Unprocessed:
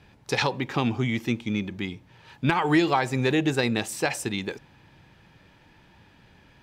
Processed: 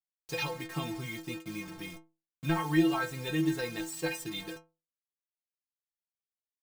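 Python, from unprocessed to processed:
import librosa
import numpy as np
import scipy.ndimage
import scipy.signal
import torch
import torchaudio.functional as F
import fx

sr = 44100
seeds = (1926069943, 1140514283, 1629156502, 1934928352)

y = fx.low_shelf(x, sr, hz=78.0, db=10.0)
y = fx.quant_dither(y, sr, seeds[0], bits=6, dither='none')
y = fx.stiff_resonator(y, sr, f0_hz=160.0, decay_s=0.32, stiffness=0.008)
y = y * librosa.db_to_amplitude(2.5)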